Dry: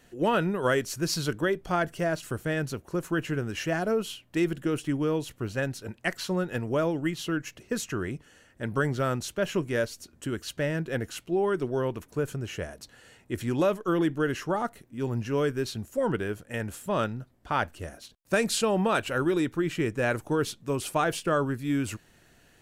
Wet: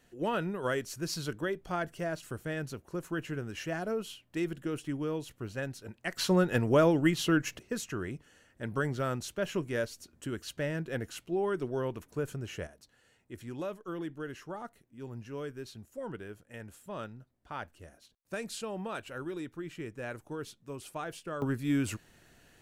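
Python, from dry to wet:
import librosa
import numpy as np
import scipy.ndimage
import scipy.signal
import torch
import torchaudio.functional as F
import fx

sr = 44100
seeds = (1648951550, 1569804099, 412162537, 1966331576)

y = fx.gain(x, sr, db=fx.steps((0.0, -7.0), (6.17, 3.0), (7.59, -5.0), (12.67, -13.0), (21.42, -1.5)))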